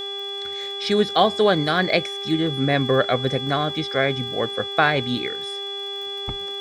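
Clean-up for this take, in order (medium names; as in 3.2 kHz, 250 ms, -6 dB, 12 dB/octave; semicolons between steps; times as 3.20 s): de-click; de-hum 399.2 Hz, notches 22; band-stop 3.4 kHz, Q 30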